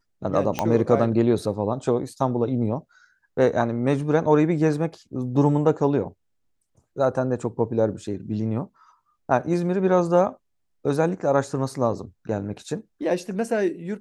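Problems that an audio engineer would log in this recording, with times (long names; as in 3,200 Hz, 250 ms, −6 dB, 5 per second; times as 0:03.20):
0:00.59: click −9 dBFS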